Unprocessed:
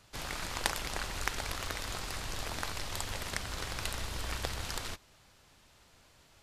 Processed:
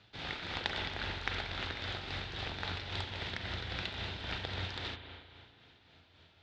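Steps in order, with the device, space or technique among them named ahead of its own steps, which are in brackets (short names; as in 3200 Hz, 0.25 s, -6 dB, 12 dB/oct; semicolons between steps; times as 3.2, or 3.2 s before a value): combo amplifier with spring reverb and tremolo (spring tank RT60 2.2 s, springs 35/43 ms, chirp 30 ms, DRR 4 dB; tremolo 3.7 Hz, depth 43%; speaker cabinet 75–4100 Hz, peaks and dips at 87 Hz +4 dB, 580 Hz -4 dB, 1100 Hz -8 dB, 3600 Hz +6 dB); gain +1 dB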